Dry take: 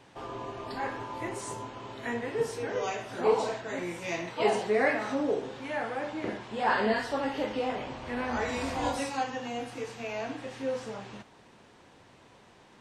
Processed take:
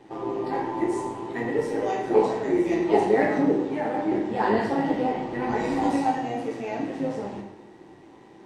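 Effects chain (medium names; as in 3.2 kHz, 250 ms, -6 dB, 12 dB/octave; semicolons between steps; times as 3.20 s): peaking EQ 250 Hz +9.5 dB 2.3 oct; small resonant body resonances 360/800/1900 Hz, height 11 dB, ringing for 35 ms; time stretch by phase-locked vocoder 0.66×; AM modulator 110 Hz, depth 40%; in parallel at -12 dB: hard clipper -28 dBFS, distortion -3 dB; on the sum: plate-style reverb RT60 0.85 s, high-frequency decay 0.85×, DRR 0 dB; trim -3.5 dB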